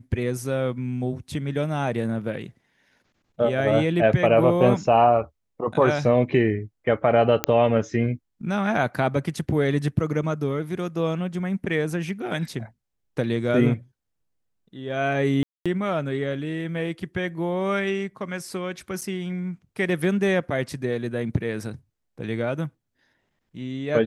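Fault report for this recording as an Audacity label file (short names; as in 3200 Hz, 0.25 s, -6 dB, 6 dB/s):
7.440000	7.440000	pop -3 dBFS
15.430000	15.660000	gap 0.226 s
19.010000	19.020000	gap 6.1 ms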